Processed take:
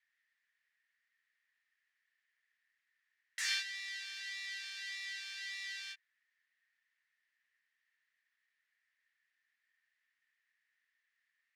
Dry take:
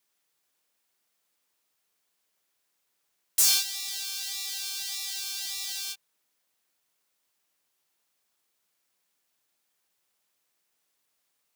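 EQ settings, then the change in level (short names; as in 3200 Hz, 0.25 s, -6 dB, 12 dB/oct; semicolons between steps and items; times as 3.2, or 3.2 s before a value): ladder band-pass 1900 Hz, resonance 85%; +6.0 dB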